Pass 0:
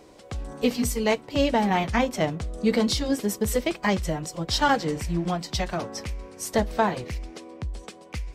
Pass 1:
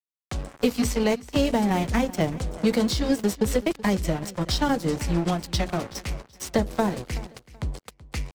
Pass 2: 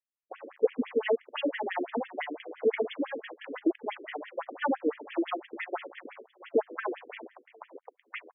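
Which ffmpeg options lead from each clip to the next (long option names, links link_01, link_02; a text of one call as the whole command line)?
ffmpeg -i in.wav -filter_complex "[0:a]aeval=exprs='sgn(val(0))*max(abs(val(0))-0.0178,0)':channel_layout=same,acrossover=split=450|6200[link_01][link_02][link_03];[link_01]acompressor=threshold=-28dB:ratio=4[link_04];[link_02]acompressor=threshold=-36dB:ratio=4[link_05];[link_03]acompressor=threshold=-47dB:ratio=4[link_06];[link_04][link_05][link_06]amix=inputs=3:normalize=0,aecho=1:1:378|756:0.112|0.0281,volume=7.5dB" out.wav
ffmpeg -i in.wav -af "lowpass=3600,afftfilt=real='re*between(b*sr/1024,350*pow(2500/350,0.5+0.5*sin(2*PI*5.9*pts/sr))/1.41,350*pow(2500/350,0.5+0.5*sin(2*PI*5.9*pts/sr))*1.41)':imag='im*between(b*sr/1024,350*pow(2500/350,0.5+0.5*sin(2*PI*5.9*pts/sr))/1.41,350*pow(2500/350,0.5+0.5*sin(2*PI*5.9*pts/sr))*1.41)':win_size=1024:overlap=0.75,volume=2dB" out.wav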